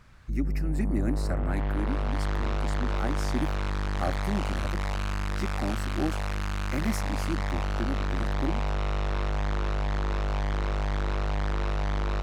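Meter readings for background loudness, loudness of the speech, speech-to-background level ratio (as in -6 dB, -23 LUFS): -31.0 LUFS, -35.5 LUFS, -4.5 dB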